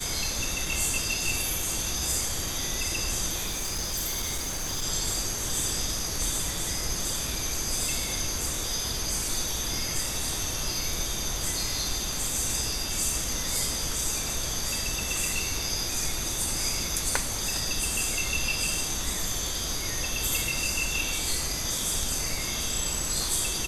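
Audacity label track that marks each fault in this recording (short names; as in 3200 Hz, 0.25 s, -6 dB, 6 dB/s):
3.460000	4.840000	clipped -26.5 dBFS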